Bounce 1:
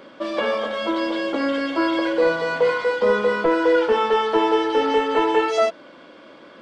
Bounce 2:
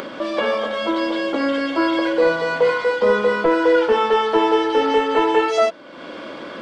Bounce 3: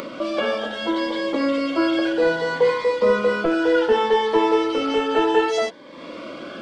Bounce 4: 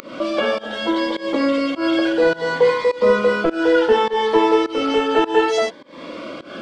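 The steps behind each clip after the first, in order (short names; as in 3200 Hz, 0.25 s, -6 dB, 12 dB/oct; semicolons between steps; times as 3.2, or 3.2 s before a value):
upward compressor, threshold -24 dBFS; gain +2 dB
cascading phaser rising 0.65 Hz
pump 103 bpm, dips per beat 1, -21 dB, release 0.188 s; gain +3 dB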